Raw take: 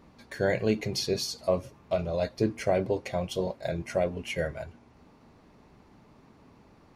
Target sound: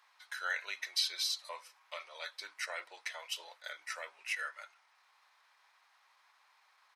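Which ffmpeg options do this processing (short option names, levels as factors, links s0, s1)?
-af "highpass=f=1200:w=0.5412,highpass=f=1200:w=1.3066,asetrate=40440,aresample=44100,atempo=1.09051"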